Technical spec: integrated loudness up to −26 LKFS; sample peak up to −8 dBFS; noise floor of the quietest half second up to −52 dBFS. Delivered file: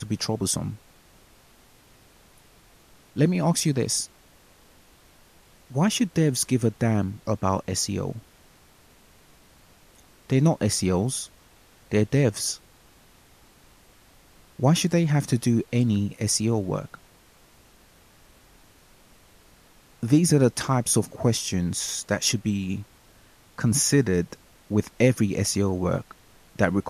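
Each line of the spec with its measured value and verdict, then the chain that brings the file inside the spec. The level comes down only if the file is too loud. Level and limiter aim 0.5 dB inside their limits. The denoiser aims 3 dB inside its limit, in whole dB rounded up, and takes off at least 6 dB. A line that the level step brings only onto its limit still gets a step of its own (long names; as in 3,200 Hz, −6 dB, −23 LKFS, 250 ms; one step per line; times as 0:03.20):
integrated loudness −24.0 LKFS: out of spec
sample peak −6.5 dBFS: out of spec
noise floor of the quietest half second −55 dBFS: in spec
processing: level −2.5 dB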